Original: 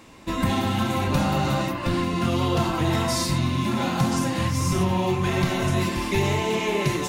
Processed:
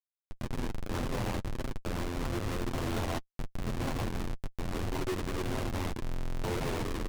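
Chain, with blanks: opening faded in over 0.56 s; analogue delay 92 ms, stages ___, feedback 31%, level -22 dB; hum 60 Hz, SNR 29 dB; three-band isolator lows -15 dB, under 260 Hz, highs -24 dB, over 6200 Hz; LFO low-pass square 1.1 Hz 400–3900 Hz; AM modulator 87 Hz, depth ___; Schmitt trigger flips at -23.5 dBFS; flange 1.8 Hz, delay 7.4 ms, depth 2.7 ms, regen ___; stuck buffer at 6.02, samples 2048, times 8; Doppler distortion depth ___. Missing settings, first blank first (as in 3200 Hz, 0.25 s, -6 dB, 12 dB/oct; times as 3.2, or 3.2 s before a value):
4096, 45%, -22%, 0.48 ms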